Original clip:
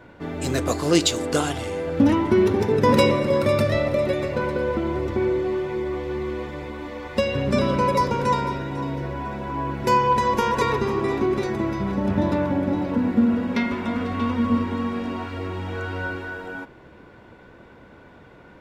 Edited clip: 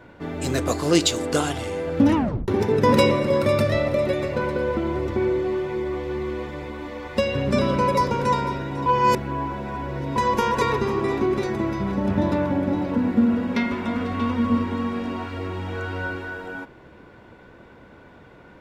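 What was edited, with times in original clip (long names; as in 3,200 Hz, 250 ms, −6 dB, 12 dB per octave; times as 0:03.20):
0:02.15: tape stop 0.33 s
0:08.86–0:10.16: reverse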